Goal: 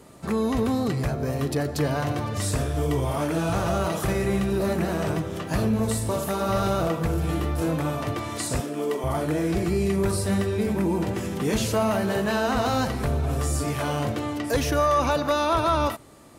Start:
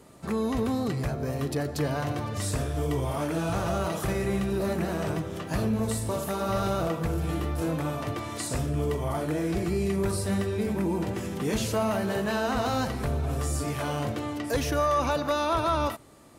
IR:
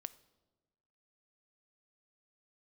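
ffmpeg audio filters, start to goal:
-filter_complex "[0:a]asettb=1/sr,asplit=3[s0][s1][s2];[s0]atrim=end=8.604[s3];[s1]atrim=start=8.6:end=9.04,asetpts=PTS-STARTPTS,afade=t=in:d=0.004:c=qsin,afade=t=out:st=0.436:d=0.004:c=qsin,highpass=f=230:w=0.5412,highpass=f=230:w=1.3066[s4];[s2]atrim=start=9.036[s5];[s3][s4]acrossfade=d=0.004:c1=hsin:c2=qsin[s6];[s6][s5]acrossfade=d=0.004:c1=qsin:c2=hsin,volume=1.5"

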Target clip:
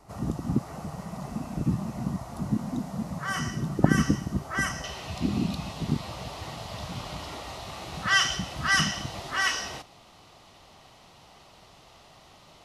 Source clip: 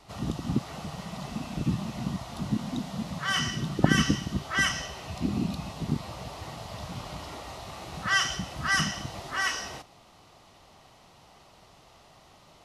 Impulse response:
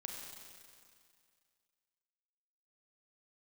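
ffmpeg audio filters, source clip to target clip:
-af "asetnsamples=n=441:p=0,asendcmd='4.84 equalizer g 2.5',equalizer=f=3400:t=o:w=1.3:g=-13.5,volume=1.19"

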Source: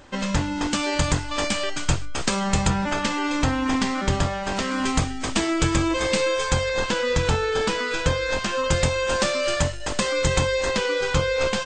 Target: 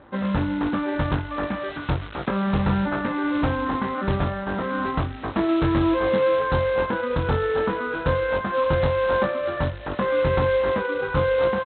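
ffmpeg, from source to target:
-filter_complex "[0:a]lowpass=f=1600:w=0.5412,lowpass=f=1600:w=1.3066,asplit=2[s0][s1];[s1]adelay=21,volume=0.531[s2];[s0][s2]amix=inputs=2:normalize=0,aresample=8000,acrusher=bits=4:mode=log:mix=0:aa=0.000001,aresample=44100,highpass=59,asplit=2[s3][s4];[s4]adelay=699.7,volume=0.0355,highshelf=f=4000:g=-15.7[s5];[s3][s5]amix=inputs=2:normalize=0"

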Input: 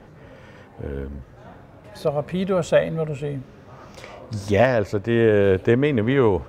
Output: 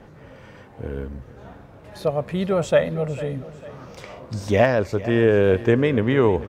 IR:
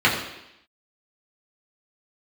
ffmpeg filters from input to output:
-af "aecho=1:1:449|898|1347|1796:0.15|0.0658|0.029|0.0127"

